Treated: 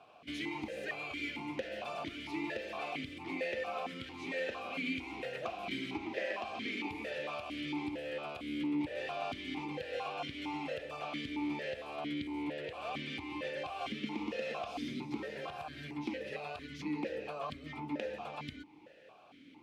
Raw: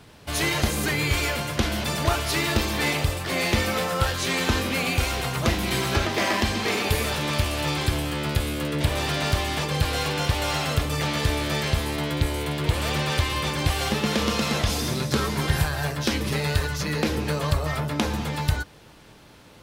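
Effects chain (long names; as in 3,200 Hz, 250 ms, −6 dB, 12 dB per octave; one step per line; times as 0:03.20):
downward compressor 4 to 1, threshold −28 dBFS, peak gain reduction 11 dB
formant filter that steps through the vowels 4.4 Hz
level +4 dB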